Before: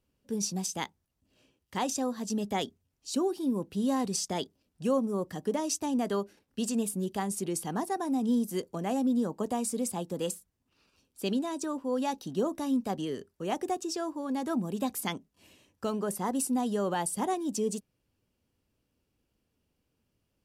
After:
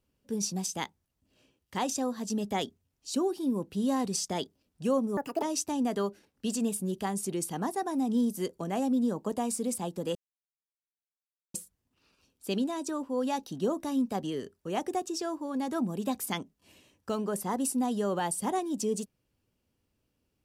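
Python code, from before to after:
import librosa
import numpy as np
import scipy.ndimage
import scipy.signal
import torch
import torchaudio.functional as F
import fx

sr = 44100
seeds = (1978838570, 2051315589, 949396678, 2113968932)

y = fx.edit(x, sr, fx.speed_span(start_s=5.17, length_s=0.39, speed=1.55),
    fx.insert_silence(at_s=10.29, length_s=1.39), tone=tone)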